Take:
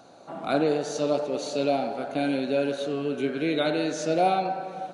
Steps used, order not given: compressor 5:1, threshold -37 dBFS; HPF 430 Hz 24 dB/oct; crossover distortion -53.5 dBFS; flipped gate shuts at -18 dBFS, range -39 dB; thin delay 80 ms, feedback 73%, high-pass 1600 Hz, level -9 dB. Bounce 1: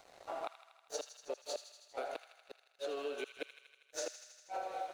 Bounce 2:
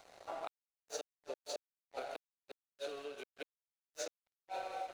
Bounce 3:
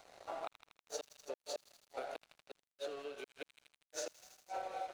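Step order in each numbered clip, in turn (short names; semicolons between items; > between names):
flipped gate > HPF > crossover distortion > compressor > thin delay; thin delay > flipped gate > compressor > HPF > crossover distortion; flipped gate > thin delay > compressor > HPF > crossover distortion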